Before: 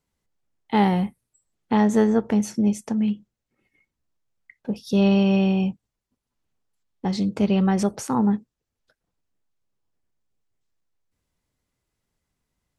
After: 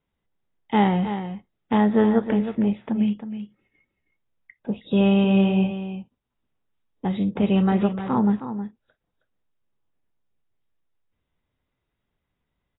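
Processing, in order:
single-tap delay 317 ms −10 dB
AAC 16 kbit/s 16,000 Hz

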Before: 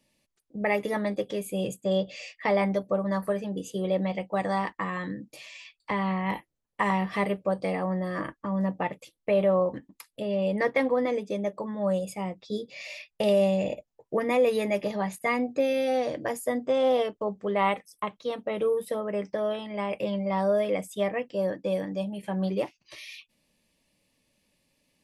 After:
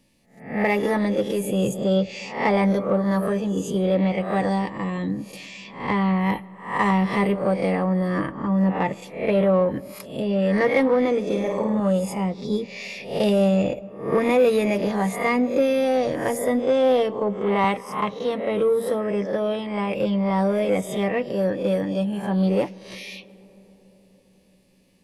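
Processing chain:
peak hold with a rise ahead of every peak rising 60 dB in 0.47 s
low-shelf EQ 430 Hz +6.5 dB
notch filter 610 Hz, Q 15
0:04.49–0:05.19: parametric band 1,400 Hz −12.5 dB 0.85 octaves
in parallel at −6 dB: soft clipping −22 dBFS, distortion −12 dB
0:11.26–0:11.80: on the sum: flutter between parallel walls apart 8.9 metres, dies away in 0.77 s
on a send at −22 dB: convolution reverb RT60 4.5 s, pre-delay 80 ms
0:17.64–0:18.14: on the sum: multiband upward and downward compressor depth 40%

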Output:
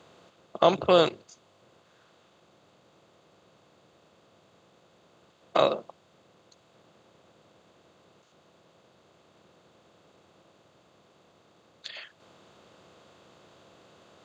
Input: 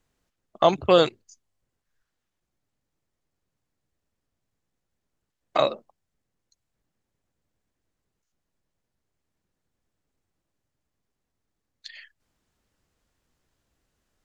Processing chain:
compressor on every frequency bin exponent 0.6
high-pass filter 90 Hz 24 dB per octave
level −4 dB

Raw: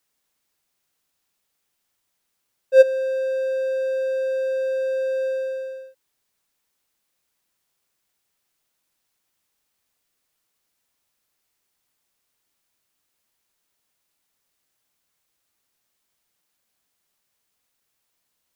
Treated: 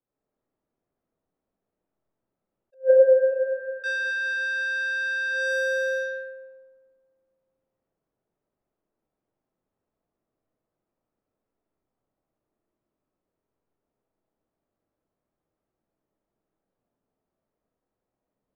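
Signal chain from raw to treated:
comb and all-pass reverb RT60 1.9 s, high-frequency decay 0.9×, pre-delay 35 ms, DRR −6.5 dB
low-pass that shuts in the quiet parts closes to 400 Hz, open at −25.5 dBFS
0:02.74–0:03.84: elliptic low-pass filter 1,200 Hz, stop band 80 dB
in parallel at +3 dB: downward compressor, threshold −22 dBFS, peak gain reduction 15.5 dB
on the sum: low-shelf EQ 460 Hz −9 dB
level that may rise only so fast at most 360 dB per second
level −1.5 dB

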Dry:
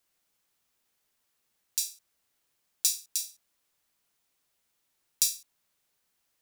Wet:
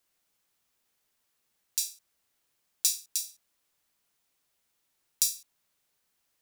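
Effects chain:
0:03.18–0:05.37: dynamic equaliser 2,400 Hz, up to −4 dB, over −42 dBFS, Q 0.75

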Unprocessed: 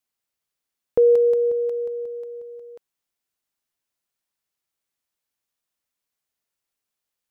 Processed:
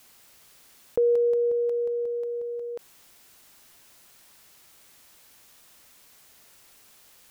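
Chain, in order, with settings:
envelope flattener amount 50%
level −6.5 dB

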